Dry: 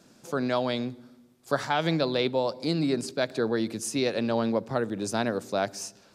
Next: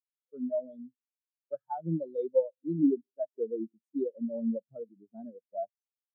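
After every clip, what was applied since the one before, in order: spectral contrast expander 4:1; trim -4 dB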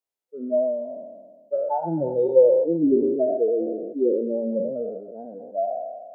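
spectral sustain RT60 1.52 s; high-order bell 550 Hz +8.5 dB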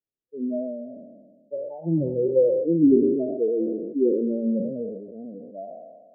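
Gaussian low-pass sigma 22 samples; trim +7 dB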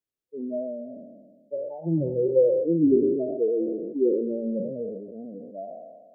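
dynamic bell 240 Hz, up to -6 dB, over -37 dBFS, Q 2.6

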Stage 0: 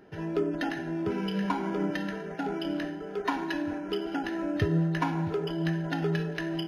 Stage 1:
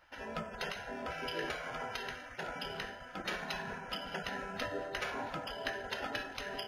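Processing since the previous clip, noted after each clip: spectral gate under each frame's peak -15 dB weak; trim +1.5 dB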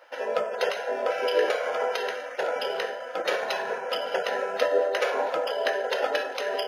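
resonant high-pass 500 Hz, resonance Q 4.9; trim +8 dB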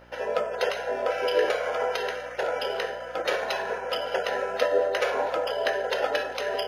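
mains buzz 60 Hz, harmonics 10, -55 dBFS -3 dB/octave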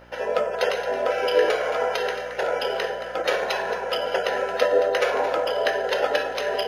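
echo whose repeats swap between lows and highs 111 ms, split 830 Hz, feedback 57%, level -8 dB; trim +3 dB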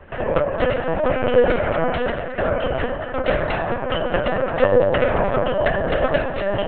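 distance through air 350 m; LPC vocoder at 8 kHz pitch kept; trim +5.5 dB

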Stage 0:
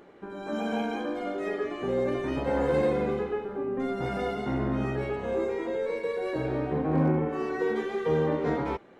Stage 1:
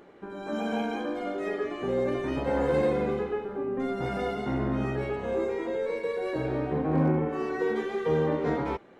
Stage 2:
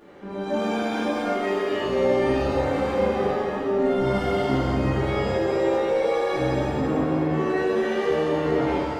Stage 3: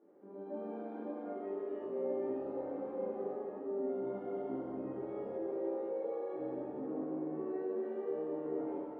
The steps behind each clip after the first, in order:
no audible change
peak limiter -23.5 dBFS, peak gain reduction 7.5 dB; pitch-shifted reverb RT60 1.6 s, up +7 st, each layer -8 dB, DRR -8 dB; trim -1 dB
ladder band-pass 410 Hz, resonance 25%; trim -4.5 dB

